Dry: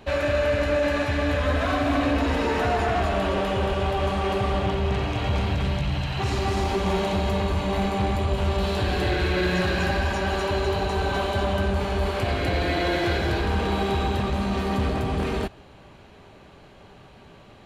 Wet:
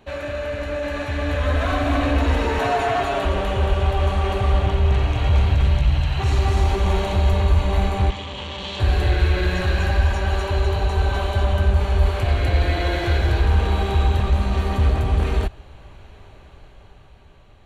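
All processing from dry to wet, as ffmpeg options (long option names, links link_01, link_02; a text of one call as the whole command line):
ffmpeg -i in.wav -filter_complex "[0:a]asettb=1/sr,asplit=3[link_01][link_02][link_03];[link_01]atrim=end=2.594[link_04];[link_02]atrim=start=2.59:end=3.25,asetpts=PTS-STARTPTS,afade=type=in:duration=0.004:curve=qsin,afade=type=out:start_time=0.656:duration=0.004:curve=qsin,highpass=frequency=180:poles=1,aecho=1:1:7.3:0.78,atrim=end_sample=29106[link_05];[link_03]atrim=start=3.246[link_06];[link_04][link_05]acrossfade=duration=0.004:curve1=hsin:curve2=qsin[link_07];[link_07][link_06]acrossfade=duration=0.004:curve1=qsin:curve2=hsin,asettb=1/sr,asplit=3[link_08][link_09][link_10];[link_08]atrim=end=8.104[link_11];[link_09]atrim=start=8.1:end=8.8,asetpts=PTS-STARTPTS,afade=type=in:duration=0.004:curve=qsin,afade=type=out:start_time=0.696:duration=0.004:curve=qsin,volume=22.5dB,asoftclip=hard,volume=-22.5dB,highpass=210,equalizer=frequency=390:width_type=q:width=4:gain=-8,equalizer=frequency=680:width_type=q:width=4:gain=-9,equalizer=frequency=1400:width_type=q:width=4:gain=-8,equalizer=frequency=3200:width_type=q:width=4:gain=9,lowpass=frequency=7200:width=0.5412,lowpass=frequency=7200:width=1.3066[link_12];[link_10]atrim=start=8.796[link_13];[link_11][link_12]acrossfade=duration=0.004:curve1=hsin:curve2=qsin[link_14];[link_14][link_13]acrossfade=duration=0.004:curve1=qsin:curve2=hsin,bandreject=frequency=5000:width=7.8,asubboost=boost=6:cutoff=74,dynaudnorm=framelen=230:gausssize=11:maxgain=8.5dB,volume=-5dB" out.wav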